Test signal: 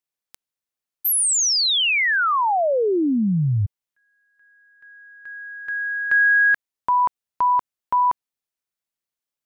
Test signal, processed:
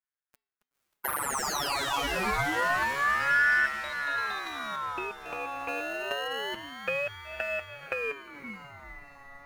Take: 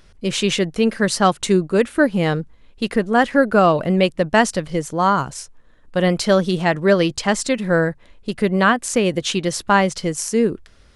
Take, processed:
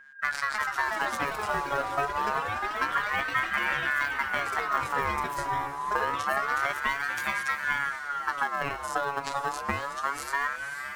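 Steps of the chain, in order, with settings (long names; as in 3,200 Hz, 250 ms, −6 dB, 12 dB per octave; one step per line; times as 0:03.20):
in parallel at −5 dB: decimation without filtering 37×
on the sum: phases set to zero 141 Hz
parametric band 920 Hz +6 dB 1.2 octaves
hum removal 226 Hz, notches 16
noise gate −42 dBFS, range −9 dB
downward compressor 6 to 1, threshold −25 dBFS
low-shelf EQ 420 Hz +10.5 dB
on a send: feedback delay with all-pass diffusion 504 ms, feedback 67%, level −8.5 dB
on the sum: delay with pitch and tempo change per echo 388 ms, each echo +7 semitones, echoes 3, each echo −6 dB
ring modulator whose carrier an LFO sweeps 1,300 Hz, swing 25%, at 0.27 Hz
level −4 dB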